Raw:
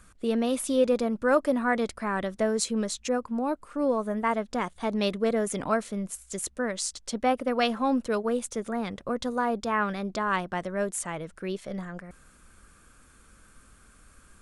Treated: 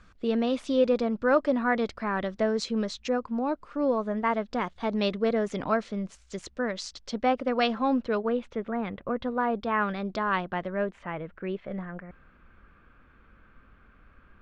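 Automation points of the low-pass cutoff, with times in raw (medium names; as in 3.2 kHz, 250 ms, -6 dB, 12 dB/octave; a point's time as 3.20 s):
low-pass 24 dB/octave
7.71 s 5.2 kHz
8.60 s 2.9 kHz
9.20 s 2.9 kHz
10.19 s 4.9 kHz
11.05 s 2.7 kHz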